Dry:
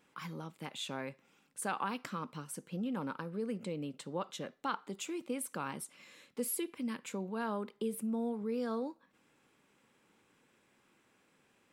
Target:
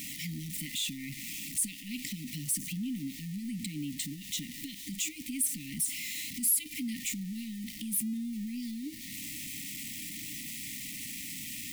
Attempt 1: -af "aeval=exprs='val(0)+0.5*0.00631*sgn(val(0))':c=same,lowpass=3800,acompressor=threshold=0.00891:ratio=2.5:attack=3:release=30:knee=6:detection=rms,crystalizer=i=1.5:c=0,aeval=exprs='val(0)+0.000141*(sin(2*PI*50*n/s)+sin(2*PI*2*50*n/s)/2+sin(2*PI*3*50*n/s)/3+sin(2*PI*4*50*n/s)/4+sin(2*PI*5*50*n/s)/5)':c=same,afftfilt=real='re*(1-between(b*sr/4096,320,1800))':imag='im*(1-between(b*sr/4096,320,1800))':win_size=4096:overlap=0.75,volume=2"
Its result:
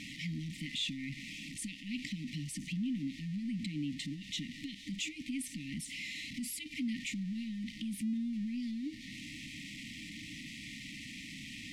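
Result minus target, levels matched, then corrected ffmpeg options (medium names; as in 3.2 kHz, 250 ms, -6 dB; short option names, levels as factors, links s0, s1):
4 kHz band +3.0 dB
-af "aeval=exprs='val(0)+0.5*0.00631*sgn(val(0))':c=same,acompressor=threshold=0.00891:ratio=2.5:attack=3:release=30:knee=6:detection=rms,crystalizer=i=1.5:c=0,aeval=exprs='val(0)+0.000141*(sin(2*PI*50*n/s)+sin(2*PI*2*50*n/s)/2+sin(2*PI*3*50*n/s)/3+sin(2*PI*4*50*n/s)/4+sin(2*PI*5*50*n/s)/5)':c=same,afftfilt=real='re*(1-between(b*sr/4096,320,1800))':imag='im*(1-between(b*sr/4096,320,1800))':win_size=4096:overlap=0.75,volume=2"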